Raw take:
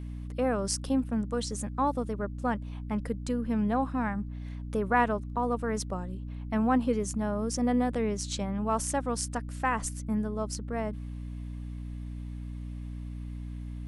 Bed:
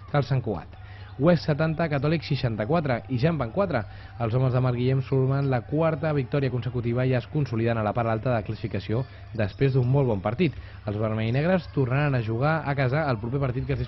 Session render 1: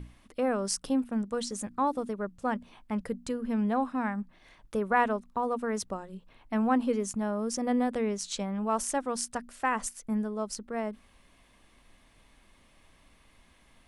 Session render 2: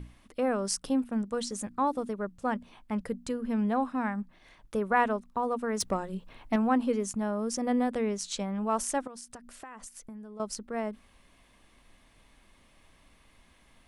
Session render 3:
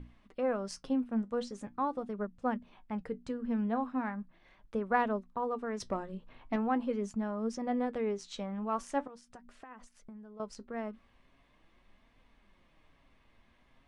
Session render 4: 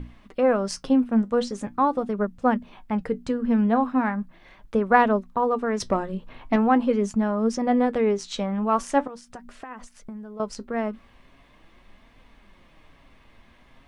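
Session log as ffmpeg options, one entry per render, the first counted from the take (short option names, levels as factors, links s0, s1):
-af "bandreject=f=60:t=h:w=6,bandreject=f=120:t=h:w=6,bandreject=f=180:t=h:w=6,bandreject=f=240:t=h:w=6,bandreject=f=300:t=h:w=6"
-filter_complex "[0:a]asettb=1/sr,asplit=3[s0][s1][s2];[s0]atrim=end=5.804[s3];[s1]atrim=start=5.8:end=6.56,asetpts=PTS-STARTPTS,afade=t=in:d=0.004:c=qsin,afade=t=out:st=0.756:d=0.004:c=qsin,aeval=exprs='0.119*sin(PI/2*1.41*val(0)/0.119)':c=same[s4];[s2]atrim=start=6.556[s5];[s3][s4]acrossfade=d=0.004:c1=hsin:c2=qsin[s6];[s6][s5]acrossfade=d=0.004:c1=qsin:c2=hsin,asettb=1/sr,asplit=3[s7][s8][s9];[s7]atrim=end=9.074[s10];[s8]atrim=start=9.07:end=10.4,asetpts=PTS-STARTPTS,afade=t=in:d=0.004:c=qsin,afade=t=out:st=1.326:d=0.004:c=qsin,acompressor=threshold=0.00891:ratio=10:attack=3.2:release=140:knee=1:detection=peak[s11];[s9]atrim=start=10.396[s12];[s10][s11]acrossfade=d=0.004:c1=hsin:c2=qsin[s13];[s13][s12]acrossfade=d=0.004:c1=qsin:c2=hsin"
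-af "adynamicsmooth=sensitivity=0.5:basefreq=4300,flanger=delay=3.8:depth=5.2:regen=66:speed=0.41:shape=triangular"
-af "volume=3.76"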